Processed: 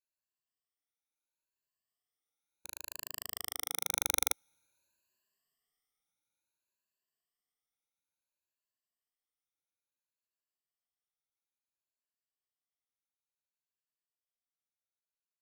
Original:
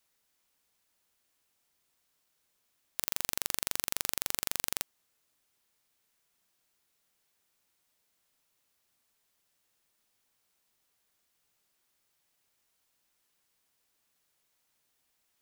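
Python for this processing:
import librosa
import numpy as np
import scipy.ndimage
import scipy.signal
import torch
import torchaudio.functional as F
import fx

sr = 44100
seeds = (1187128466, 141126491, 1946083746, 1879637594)

y = fx.spec_ripple(x, sr, per_octave=1.4, drift_hz=0.65, depth_db=20)
y = fx.doppler_pass(y, sr, speed_mps=39, closest_m=11.0, pass_at_s=4.17)
y = F.gain(torch.from_numpy(y), -1.0).numpy()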